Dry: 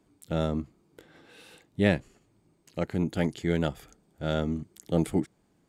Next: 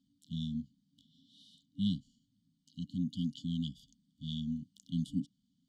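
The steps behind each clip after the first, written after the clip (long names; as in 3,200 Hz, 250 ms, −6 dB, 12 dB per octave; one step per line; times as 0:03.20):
brick-wall band-stop 280–2,900 Hz
three-way crossover with the lows and the highs turned down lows −13 dB, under 170 Hz, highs −20 dB, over 5,800 Hz
level −2.5 dB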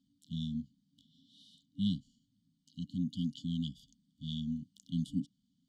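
no processing that can be heard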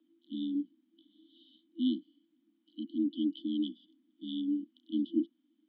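single-sideband voice off tune +51 Hz 230–2,900 Hz
level +8 dB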